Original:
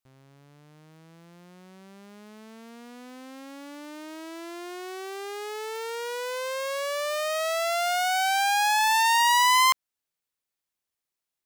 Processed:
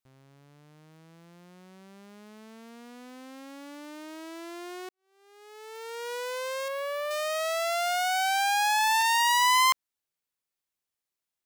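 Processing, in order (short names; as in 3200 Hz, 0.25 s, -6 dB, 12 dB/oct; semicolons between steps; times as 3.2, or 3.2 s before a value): 4.89–6.13 fade in quadratic; 6.68–7.11 bell 6600 Hz -12.5 dB 1.5 oct; 9.01–9.42 Doppler distortion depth 0.17 ms; gain -2 dB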